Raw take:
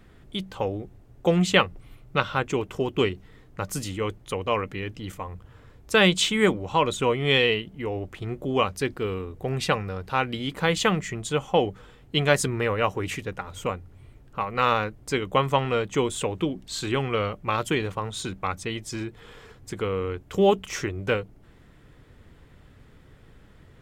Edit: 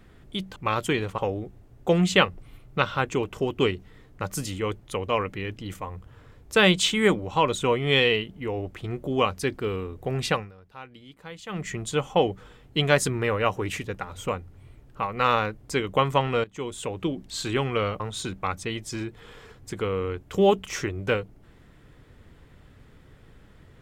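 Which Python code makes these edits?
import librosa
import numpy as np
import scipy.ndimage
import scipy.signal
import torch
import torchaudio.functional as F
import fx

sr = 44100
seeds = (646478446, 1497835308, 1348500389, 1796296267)

y = fx.edit(x, sr, fx.fade_down_up(start_s=9.68, length_s=1.4, db=-18.0, fade_s=0.22),
    fx.fade_in_from(start_s=15.82, length_s=0.77, floor_db=-16.5),
    fx.move(start_s=17.38, length_s=0.62, to_s=0.56), tone=tone)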